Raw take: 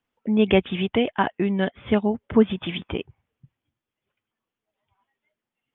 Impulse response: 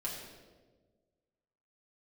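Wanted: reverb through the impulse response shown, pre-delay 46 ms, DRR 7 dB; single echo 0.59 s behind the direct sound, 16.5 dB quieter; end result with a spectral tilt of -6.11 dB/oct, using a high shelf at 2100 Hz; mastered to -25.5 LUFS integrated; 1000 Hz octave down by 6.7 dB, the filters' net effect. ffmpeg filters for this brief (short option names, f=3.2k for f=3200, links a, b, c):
-filter_complex "[0:a]equalizer=f=1k:t=o:g=-8,highshelf=f=2.1k:g=-3.5,aecho=1:1:590:0.15,asplit=2[a][b];[1:a]atrim=start_sample=2205,adelay=46[c];[b][c]afir=irnorm=-1:irlink=0,volume=-8.5dB[d];[a][d]amix=inputs=2:normalize=0,volume=-3dB"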